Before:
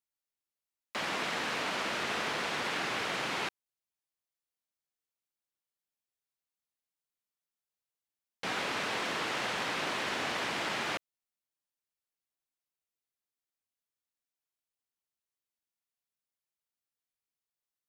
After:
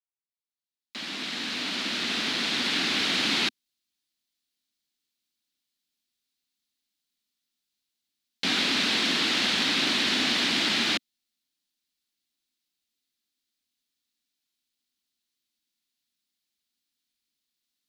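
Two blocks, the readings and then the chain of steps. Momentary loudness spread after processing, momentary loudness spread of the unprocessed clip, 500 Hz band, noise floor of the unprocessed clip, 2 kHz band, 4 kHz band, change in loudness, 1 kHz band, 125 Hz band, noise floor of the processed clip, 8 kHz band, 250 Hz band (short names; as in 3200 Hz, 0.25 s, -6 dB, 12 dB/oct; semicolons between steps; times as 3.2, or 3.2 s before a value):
8 LU, 4 LU, +0.5 dB, under -85 dBFS, +6.0 dB, +13.0 dB, +9.0 dB, -0.5 dB, +5.0 dB, under -85 dBFS, +8.5 dB, +10.5 dB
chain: opening faded in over 3.31 s; ten-band EQ 125 Hz -7 dB, 250 Hz +12 dB, 500 Hz -8 dB, 1000 Hz -6 dB, 4000 Hz +11 dB; gain +6 dB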